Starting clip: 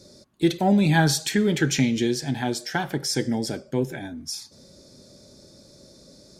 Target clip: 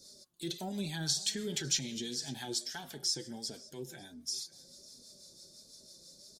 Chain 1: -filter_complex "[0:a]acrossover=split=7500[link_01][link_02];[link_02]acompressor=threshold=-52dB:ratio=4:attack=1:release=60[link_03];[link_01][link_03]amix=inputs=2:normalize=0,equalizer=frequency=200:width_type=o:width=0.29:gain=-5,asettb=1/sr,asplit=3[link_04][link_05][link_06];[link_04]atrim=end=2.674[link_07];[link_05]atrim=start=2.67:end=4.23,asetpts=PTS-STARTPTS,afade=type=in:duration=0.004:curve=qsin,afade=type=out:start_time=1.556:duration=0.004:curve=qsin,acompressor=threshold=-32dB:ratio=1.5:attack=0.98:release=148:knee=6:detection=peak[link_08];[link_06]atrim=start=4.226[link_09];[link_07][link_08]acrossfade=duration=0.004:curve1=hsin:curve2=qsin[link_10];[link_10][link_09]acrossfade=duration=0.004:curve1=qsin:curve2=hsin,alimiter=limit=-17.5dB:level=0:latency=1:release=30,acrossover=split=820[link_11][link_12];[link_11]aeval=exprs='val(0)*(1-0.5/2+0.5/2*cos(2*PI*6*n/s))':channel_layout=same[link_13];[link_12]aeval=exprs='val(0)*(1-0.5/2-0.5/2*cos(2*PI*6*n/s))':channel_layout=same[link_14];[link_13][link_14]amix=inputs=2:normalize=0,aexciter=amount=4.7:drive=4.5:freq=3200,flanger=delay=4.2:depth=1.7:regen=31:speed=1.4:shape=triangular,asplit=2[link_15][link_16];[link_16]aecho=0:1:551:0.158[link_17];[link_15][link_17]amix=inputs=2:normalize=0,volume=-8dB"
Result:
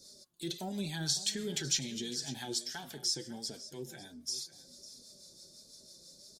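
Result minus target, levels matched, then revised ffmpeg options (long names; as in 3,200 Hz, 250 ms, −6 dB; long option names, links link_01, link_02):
echo-to-direct +6 dB
-filter_complex "[0:a]acrossover=split=7500[link_01][link_02];[link_02]acompressor=threshold=-52dB:ratio=4:attack=1:release=60[link_03];[link_01][link_03]amix=inputs=2:normalize=0,equalizer=frequency=200:width_type=o:width=0.29:gain=-5,asettb=1/sr,asplit=3[link_04][link_05][link_06];[link_04]atrim=end=2.674[link_07];[link_05]atrim=start=2.67:end=4.23,asetpts=PTS-STARTPTS,afade=type=in:duration=0.004:curve=qsin,afade=type=out:start_time=1.556:duration=0.004:curve=qsin,acompressor=threshold=-32dB:ratio=1.5:attack=0.98:release=148:knee=6:detection=peak[link_08];[link_06]atrim=start=4.226[link_09];[link_07][link_08]acrossfade=duration=0.004:curve1=hsin:curve2=qsin[link_10];[link_10][link_09]acrossfade=duration=0.004:curve1=qsin:curve2=hsin,alimiter=limit=-17.5dB:level=0:latency=1:release=30,acrossover=split=820[link_11][link_12];[link_11]aeval=exprs='val(0)*(1-0.5/2+0.5/2*cos(2*PI*6*n/s))':channel_layout=same[link_13];[link_12]aeval=exprs='val(0)*(1-0.5/2-0.5/2*cos(2*PI*6*n/s))':channel_layout=same[link_14];[link_13][link_14]amix=inputs=2:normalize=0,aexciter=amount=4.7:drive=4.5:freq=3200,flanger=delay=4.2:depth=1.7:regen=31:speed=1.4:shape=triangular,asplit=2[link_15][link_16];[link_16]aecho=0:1:551:0.0794[link_17];[link_15][link_17]amix=inputs=2:normalize=0,volume=-8dB"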